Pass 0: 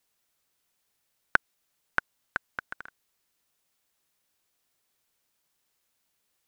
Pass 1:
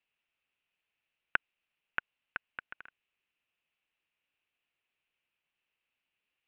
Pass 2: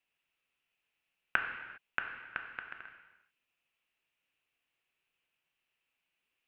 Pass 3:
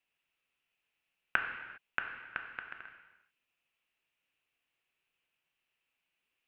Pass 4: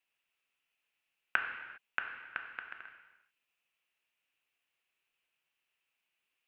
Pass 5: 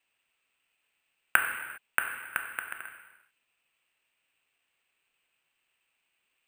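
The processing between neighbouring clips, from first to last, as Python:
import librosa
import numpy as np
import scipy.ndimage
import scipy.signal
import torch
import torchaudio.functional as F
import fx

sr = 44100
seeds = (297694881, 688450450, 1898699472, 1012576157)

y1 = fx.ladder_lowpass(x, sr, hz=2900.0, resonance_pct=70)
y1 = F.gain(torch.from_numpy(y1), 1.5).numpy()
y2 = fx.rev_gated(y1, sr, seeds[0], gate_ms=430, shape='falling', drr_db=3.0)
y3 = y2
y4 = fx.low_shelf(y3, sr, hz=390.0, db=-7.0)
y5 = np.repeat(scipy.signal.resample_poly(y4, 1, 4), 4)[:len(y4)]
y5 = F.gain(torch.from_numpy(y5), 7.5).numpy()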